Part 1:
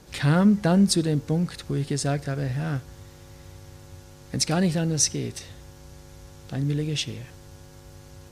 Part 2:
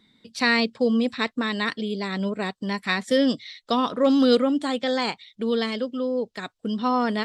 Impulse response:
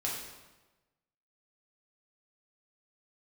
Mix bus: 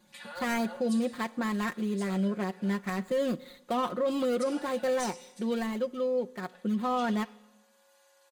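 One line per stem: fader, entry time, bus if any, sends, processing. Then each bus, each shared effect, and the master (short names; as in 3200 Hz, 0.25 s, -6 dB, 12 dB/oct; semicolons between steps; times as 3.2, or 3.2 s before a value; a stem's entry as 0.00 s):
-16.5 dB, 0.00 s, send -10 dB, inverse Chebyshev high-pass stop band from 280 Hz, stop band 40 dB; comb 3.5 ms, depth 88%; auto duck -9 dB, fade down 0.40 s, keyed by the second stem
-5.0 dB, 0.00 s, send -23 dB, median filter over 15 samples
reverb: on, RT60 1.2 s, pre-delay 3 ms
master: bell 5500 Hz -9 dB 0.25 oct; comb 5.6 ms, depth 66%; limiter -21.5 dBFS, peak gain reduction 8.5 dB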